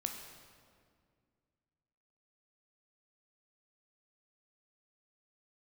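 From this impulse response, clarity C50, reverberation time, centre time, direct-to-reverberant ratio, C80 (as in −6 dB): 5.0 dB, 2.1 s, 45 ms, 3.0 dB, 6.5 dB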